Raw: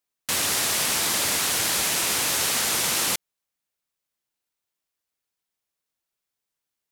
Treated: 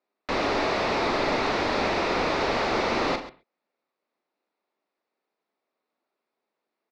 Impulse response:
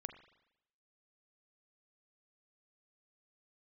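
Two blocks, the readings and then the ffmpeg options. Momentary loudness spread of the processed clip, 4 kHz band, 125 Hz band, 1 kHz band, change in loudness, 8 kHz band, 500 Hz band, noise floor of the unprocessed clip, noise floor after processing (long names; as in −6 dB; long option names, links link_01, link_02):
4 LU, −7.5 dB, +3.0 dB, +6.0 dB, −4.0 dB, −23.5 dB, +10.0 dB, −85 dBFS, −85 dBFS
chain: -filter_complex "[0:a]highpass=frequency=210:width=0.5412,highpass=frequency=210:width=1.3066,equalizer=frequency=390:width_type=q:width=4:gain=4,equalizer=frequency=640:width_type=q:width=4:gain=3,equalizer=frequency=1600:width_type=q:width=4:gain=-5,equalizer=frequency=3100:width_type=q:width=4:gain=-9,lowpass=frequency=4800:width=0.5412,lowpass=frequency=4800:width=1.3066,asplit=2[link_01][link_02];[link_02]highpass=frequency=720:poles=1,volume=16dB,asoftclip=type=tanh:threshold=-17dB[link_03];[link_01][link_03]amix=inputs=2:normalize=0,lowpass=frequency=1100:poles=1,volume=-6dB,lowshelf=frequency=340:gain=10.5,aecho=1:1:42|135:0.335|0.178,asplit=2[link_04][link_05];[1:a]atrim=start_sample=2205,atrim=end_sample=6174,lowpass=6900[link_06];[link_05][link_06]afir=irnorm=-1:irlink=0,volume=10.5dB[link_07];[link_04][link_07]amix=inputs=2:normalize=0,volume=-8dB"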